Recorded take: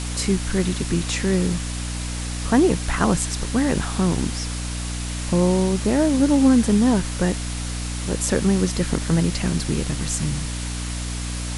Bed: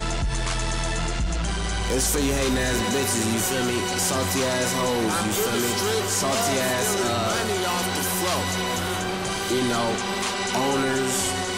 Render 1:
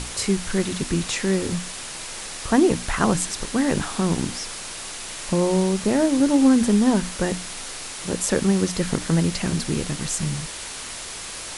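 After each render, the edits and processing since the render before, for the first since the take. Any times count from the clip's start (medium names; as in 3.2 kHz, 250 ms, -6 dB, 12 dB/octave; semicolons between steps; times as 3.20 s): hum notches 60/120/180/240/300 Hz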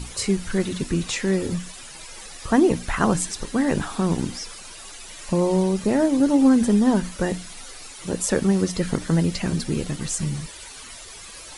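noise reduction 12 dB, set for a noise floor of -35 dBFS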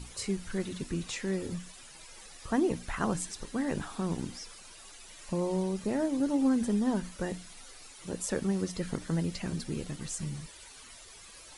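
trim -10.5 dB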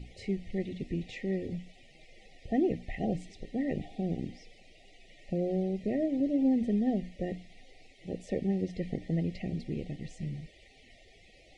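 FFT band-reject 800–1800 Hz; low-pass 2.4 kHz 12 dB/octave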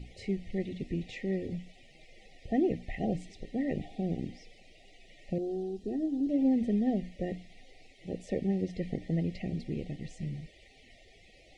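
5.38–6.29 s: static phaser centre 580 Hz, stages 6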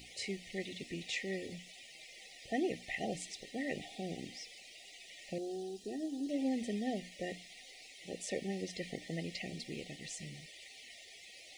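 tilt EQ +4.5 dB/octave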